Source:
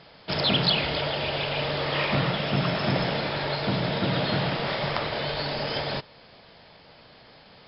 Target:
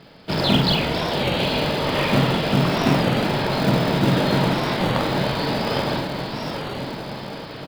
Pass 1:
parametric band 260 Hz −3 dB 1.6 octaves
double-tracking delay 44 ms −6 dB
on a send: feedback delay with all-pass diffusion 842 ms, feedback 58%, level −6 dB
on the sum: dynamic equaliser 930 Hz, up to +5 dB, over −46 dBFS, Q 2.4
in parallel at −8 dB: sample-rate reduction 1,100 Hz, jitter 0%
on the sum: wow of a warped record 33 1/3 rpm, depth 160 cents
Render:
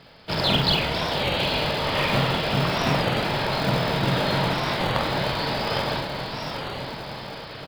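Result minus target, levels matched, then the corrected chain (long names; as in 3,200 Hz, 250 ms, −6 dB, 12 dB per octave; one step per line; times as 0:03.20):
250 Hz band −4.5 dB
parametric band 260 Hz +6.5 dB 1.6 octaves
double-tracking delay 44 ms −6 dB
on a send: feedback delay with all-pass diffusion 842 ms, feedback 58%, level −6 dB
on the sum: dynamic equaliser 930 Hz, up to +5 dB, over −46 dBFS, Q 2.4
in parallel at −8 dB: sample-rate reduction 1,100 Hz, jitter 0%
on the sum: wow of a warped record 33 1/3 rpm, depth 160 cents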